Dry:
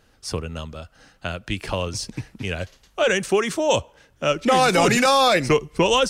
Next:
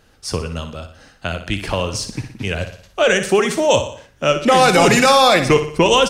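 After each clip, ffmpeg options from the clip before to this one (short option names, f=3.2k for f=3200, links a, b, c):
-af "aecho=1:1:60|120|180|240|300:0.316|0.152|0.0729|0.035|0.0168,volume=4.5dB"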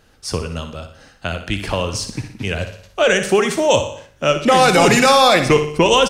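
-af "aecho=1:1:80|160|240:0.141|0.0466|0.0154"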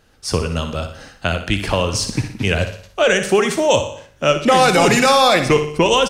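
-af "dynaudnorm=f=110:g=5:m=10.5dB,volume=-2dB"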